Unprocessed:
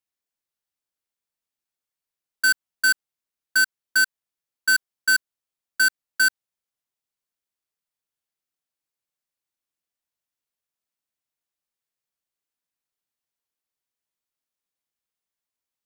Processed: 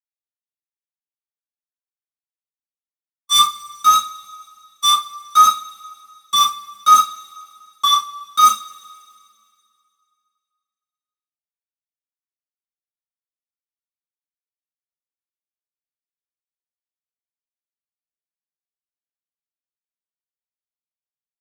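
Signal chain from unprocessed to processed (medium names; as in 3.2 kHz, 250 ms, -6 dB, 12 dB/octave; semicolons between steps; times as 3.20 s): sawtooth pitch modulation +3.5 st, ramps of 1142 ms; gate -21 dBFS, range -47 dB; treble shelf 2.2 kHz +8.5 dB; in parallel at 0 dB: gain riding within 4 dB 0.5 s; on the sum: rotary cabinet horn 0.7 Hz; waveshaping leveller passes 5; reverberation, pre-delay 3 ms, DRR -4.5 dB; speed mistake 45 rpm record played at 33 rpm; trim -16 dB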